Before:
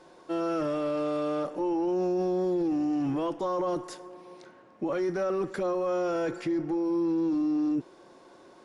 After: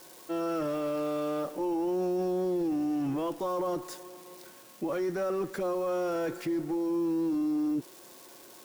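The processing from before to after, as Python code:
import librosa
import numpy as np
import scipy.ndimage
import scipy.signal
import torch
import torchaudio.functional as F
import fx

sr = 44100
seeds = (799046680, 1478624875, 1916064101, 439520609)

y = x + 0.5 * 10.0 ** (-38.0 / 20.0) * np.diff(np.sign(x), prepend=np.sign(x[:1]))
y = y * 10.0 ** (-2.0 / 20.0)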